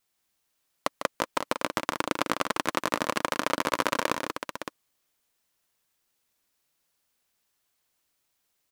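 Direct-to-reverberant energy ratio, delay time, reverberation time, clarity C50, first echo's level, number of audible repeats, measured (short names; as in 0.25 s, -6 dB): none, 0.15 s, none, none, -8.5 dB, 3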